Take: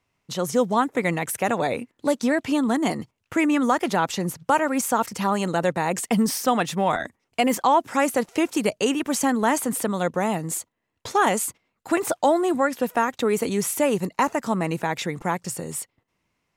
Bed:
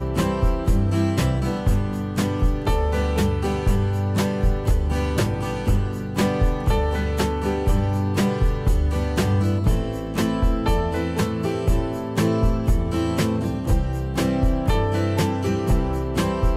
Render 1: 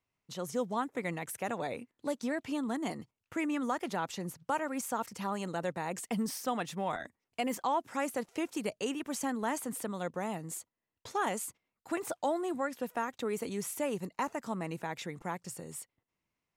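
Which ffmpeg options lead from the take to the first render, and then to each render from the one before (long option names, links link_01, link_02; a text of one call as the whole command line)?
ffmpeg -i in.wav -af "volume=-12.5dB" out.wav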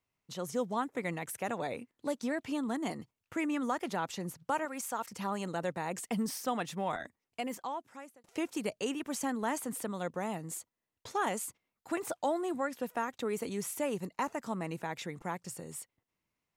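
ffmpeg -i in.wav -filter_complex "[0:a]asettb=1/sr,asplit=3[link_01][link_02][link_03];[link_01]atrim=end=4.654[link_04];[link_02]atrim=start=4.65:end=5.1,asetpts=PTS-STARTPTS,afade=type=in:duration=0.004:curve=qsin,afade=type=out:start_time=0.446:duration=0.004:curve=qsin,lowshelf=frequency=410:gain=-9[link_05];[link_03]atrim=start=5.096[link_06];[link_04][link_05]acrossfade=duration=0.004:curve1=hsin:curve2=qsin[link_07];[link_07][link_06]acrossfade=duration=0.004:curve1=qsin:curve2=hsin,asplit=2[link_08][link_09];[link_08]atrim=end=8.24,asetpts=PTS-STARTPTS,afade=type=out:start_time=7:duration=1.24[link_10];[link_09]atrim=start=8.24,asetpts=PTS-STARTPTS,afade=type=in:duration=0.004:curve=hsin[link_11];[link_10][link_11]concat=n=2:v=0:a=1" out.wav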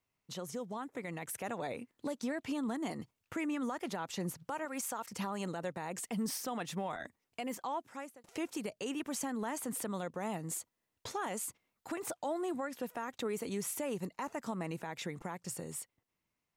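ffmpeg -i in.wav -af "alimiter=level_in=8dB:limit=-24dB:level=0:latency=1:release=197,volume=-8dB,dynaudnorm=framelen=200:gausssize=11:maxgain=3.5dB" out.wav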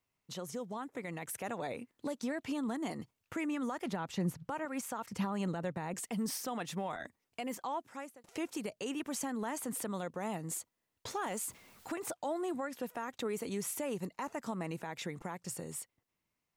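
ffmpeg -i in.wav -filter_complex "[0:a]asettb=1/sr,asplit=3[link_01][link_02][link_03];[link_01]atrim=end=3.864[link_04];[link_02]atrim=start=3.86:end=5.94,asetpts=PTS-STARTPTS,afade=type=in:duration=0.004:curve=qsin,afade=type=out:start_time=2.076:duration=0.004:curve=qsin,bass=frequency=250:gain=7,treble=frequency=4000:gain=-5[link_05];[link_03]atrim=start=5.936[link_06];[link_04][link_05]acrossfade=duration=0.004:curve1=hsin:curve2=qsin[link_07];[link_07][link_06]acrossfade=duration=0.004:curve1=qsin:curve2=hsin,asettb=1/sr,asplit=3[link_08][link_09][link_10];[link_08]atrim=end=11.084[link_11];[link_09]atrim=start=11.08:end=11.93,asetpts=PTS-STARTPTS,afade=type=in:duration=0.004:curve=qsin,afade=type=out:start_time=0.846:duration=0.004:curve=qsin,aeval=exprs='val(0)+0.5*0.00211*sgn(val(0))':channel_layout=same[link_12];[link_10]atrim=start=11.926[link_13];[link_11][link_12]acrossfade=duration=0.004:curve1=hsin:curve2=qsin[link_14];[link_14][link_13]acrossfade=duration=0.004:curve1=qsin:curve2=hsin" out.wav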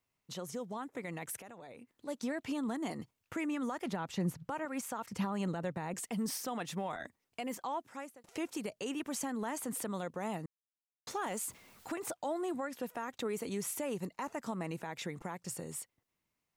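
ffmpeg -i in.wav -filter_complex "[0:a]asplit=3[link_01][link_02][link_03];[link_01]afade=type=out:start_time=1.4:duration=0.02[link_04];[link_02]acompressor=threshold=-51dB:ratio=3:attack=3.2:release=140:knee=1:detection=peak,afade=type=in:start_time=1.4:duration=0.02,afade=type=out:start_time=2.07:duration=0.02[link_05];[link_03]afade=type=in:start_time=2.07:duration=0.02[link_06];[link_04][link_05][link_06]amix=inputs=3:normalize=0,asplit=3[link_07][link_08][link_09];[link_07]atrim=end=10.46,asetpts=PTS-STARTPTS,afade=type=out:start_time=10.456:duration=0.004:curve=hsin[link_10];[link_08]atrim=start=10.46:end=11.07,asetpts=PTS-STARTPTS,volume=0[link_11];[link_09]atrim=start=11.07,asetpts=PTS-STARTPTS,afade=type=in:duration=0.004:curve=hsin[link_12];[link_10][link_11][link_12]concat=n=3:v=0:a=1" out.wav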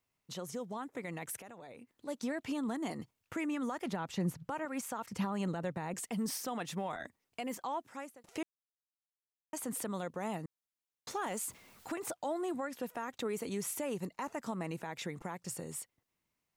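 ffmpeg -i in.wav -filter_complex "[0:a]asplit=3[link_01][link_02][link_03];[link_01]atrim=end=8.43,asetpts=PTS-STARTPTS,afade=type=out:start_time=8.426:duration=0.004:curve=hsin[link_04];[link_02]atrim=start=8.43:end=9.53,asetpts=PTS-STARTPTS,volume=0[link_05];[link_03]atrim=start=9.53,asetpts=PTS-STARTPTS,afade=type=in:duration=0.004:curve=hsin[link_06];[link_04][link_05][link_06]concat=n=3:v=0:a=1" out.wav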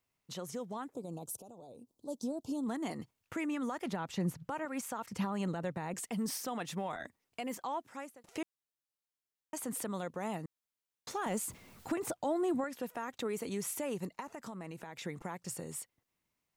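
ffmpeg -i in.wav -filter_complex "[0:a]asplit=3[link_01][link_02][link_03];[link_01]afade=type=out:start_time=0.93:duration=0.02[link_04];[link_02]asuperstop=centerf=1900:order=4:qfactor=0.52,afade=type=in:start_time=0.93:duration=0.02,afade=type=out:start_time=2.65:duration=0.02[link_05];[link_03]afade=type=in:start_time=2.65:duration=0.02[link_06];[link_04][link_05][link_06]amix=inputs=3:normalize=0,asettb=1/sr,asplit=3[link_07][link_08][link_09];[link_07]atrim=end=11.264[link_10];[link_08]atrim=start=11.26:end=12.64,asetpts=PTS-STARTPTS,afade=type=in:duration=0.004:curve=qsin,afade=type=out:start_time=1.376:duration=0.004:curve=qsin,lowshelf=frequency=360:gain=9.5[link_11];[link_09]atrim=start=12.636[link_12];[link_10][link_11]acrossfade=duration=0.004:curve1=hsin:curve2=qsin[link_13];[link_13][link_12]acrossfade=duration=0.004:curve1=qsin:curve2=hsin,asettb=1/sr,asplit=3[link_14][link_15][link_16];[link_14]atrim=end=14.204[link_17];[link_15]atrim=start=14.2:end=15.05,asetpts=PTS-STARTPTS,afade=type=in:duration=0.004:curve=qsin,afade=type=out:start_time=0.846:duration=0.004:curve=qsin,acompressor=threshold=-41dB:ratio=4:attack=3.2:release=140:knee=1:detection=peak[link_18];[link_16]atrim=start=15.046[link_19];[link_17][link_18]acrossfade=duration=0.004:curve1=hsin:curve2=qsin[link_20];[link_20][link_19]acrossfade=duration=0.004:curve1=qsin:curve2=hsin" out.wav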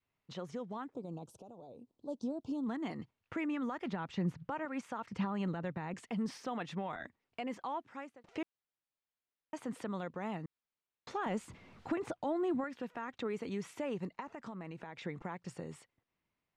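ffmpeg -i in.wav -af "lowpass=3300,adynamicequalizer=threshold=0.00316:dfrequency=600:dqfactor=1.2:tfrequency=600:tqfactor=1.2:attack=5:release=100:ratio=0.375:range=2.5:mode=cutabove:tftype=bell" out.wav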